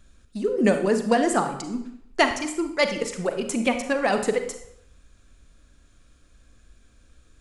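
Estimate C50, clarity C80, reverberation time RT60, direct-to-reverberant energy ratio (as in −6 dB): 8.5 dB, 11.5 dB, 0.70 s, 7.0 dB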